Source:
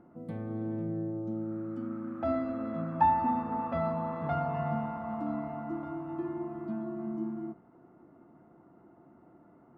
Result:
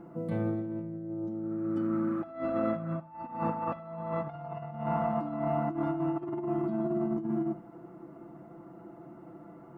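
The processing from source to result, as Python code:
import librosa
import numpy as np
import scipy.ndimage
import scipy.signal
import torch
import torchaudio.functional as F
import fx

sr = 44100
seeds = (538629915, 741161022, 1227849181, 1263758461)

p1 = x + 0.67 * np.pad(x, (int(6.0 * sr / 1000.0), 0))[:len(x)]
p2 = fx.over_compress(p1, sr, threshold_db=-35.0, ratio=-0.5)
p3 = p2 + fx.echo_feedback(p2, sr, ms=74, feedback_pct=51, wet_db=-18.0, dry=0)
y = F.gain(torch.from_numpy(p3), 3.0).numpy()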